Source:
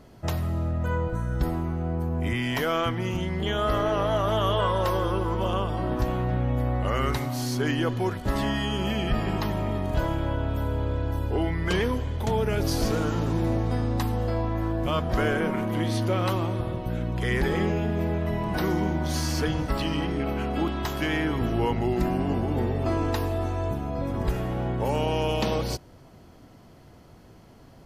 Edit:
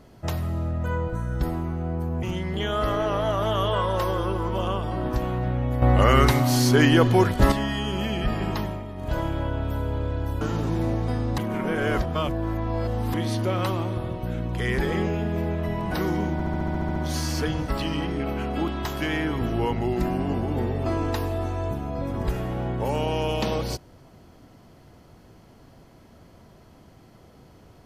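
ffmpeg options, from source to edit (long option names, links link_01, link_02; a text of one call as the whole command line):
ffmpeg -i in.wav -filter_complex "[0:a]asplit=18[link_01][link_02][link_03][link_04][link_05][link_06][link_07][link_08][link_09][link_10][link_11][link_12][link_13][link_14][link_15][link_16][link_17][link_18];[link_01]atrim=end=2.232[link_19];[link_02]atrim=start=3.088:end=6.682[link_20];[link_03]atrim=start=6.678:end=8.382,asetpts=PTS-STARTPTS,volume=8.5dB[link_21];[link_04]atrim=start=8.378:end=9.7,asetpts=PTS-STARTPTS,afade=type=out:start_time=1.082:duration=0.24:silence=0.375837[link_22];[link_05]atrim=start=9.7:end=9.81,asetpts=PTS-STARTPTS,volume=-8.5dB[link_23];[link_06]atrim=start=9.81:end=11.272,asetpts=PTS-STARTPTS,afade=type=in:duration=0.24:silence=0.375837[link_24];[link_07]atrim=start=13.038:end=14.012[link_25];[link_08]atrim=start=14.008:end=15.772,asetpts=PTS-STARTPTS,areverse[link_26];[link_09]atrim=start=15.768:end=19.032[link_27];[link_10]atrim=start=18.958:end=19.032[link_28];[link_11]atrim=start=18.958:end=19.032[link_29];[link_12]atrim=start=18.958:end=19.032[link_30];[link_13]atrim=start=18.958:end=19.032[link_31];[link_14]atrim=start=18.958:end=19.032[link_32];[link_15]atrim=start=18.958:end=19.032[link_33];[link_16]atrim=start=18.958:end=19.032[link_34];[link_17]atrim=start=18.958:end=19.032[link_35];[link_18]atrim=start=18.958[link_36];[link_19][link_20]acrossfade=duration=0.004:curve1=hsin:curve2=hsin[link_37];[link_37][link_21]acrossfade=duration=0.004:curve1=hsin:curve2=hsin[link_38];[link_22][link_23][link_24]concat=n=3:v=0:a=1[link_39];[link_38][link_39]acrossfade=duration=0.004:curve1=hsin:curve2=hsin[link_40];[link_40][link_25]acrossfade=duration=0.004:curve1=hsin:curve2=hsin[link_41];[link_41][link_26]acrossfade=duration=0.004:curve1=hsin:curve2=hsin[link_42];[link_42][link_27]acrossfade=duration=0.004:curve1=hsin:curve2=hsin[link_43];[link_43][link_28]acrossfade=duration=0.004:curve1=hsin:curve2=hsin[link_44];[link_44][link_29]acrossfade=duration=0.004:curve1=hsin:curve2=hsin[link_45];[link_45][link_30]acrossfade=duration=0.004:curve1=hsin:curve2=hsin[link_46];[link_46][link_31]acrossfade=duration=0.004:curve1=hsin:curve2=hsin[link_47];[link_47][link_32]acrossfade=duration=0.004:curve1=hsin:curve2=hsin[link_48];[link_48][link_33]acrossfade=duration=0.004:curve1=hsin:curve2=hsin[link_49];[link_49][link_34]acrossfade=duration=0.004:curve1=hsin:curve2=hsin[link_50];[link_50][link_35]acrossfade=duration=0.004:curve1=hsin:curve2=hsin[link_51];[link_51][link_36]acrossfade=duration=0.004:curve1=hsin:curve2=hsin" out.wav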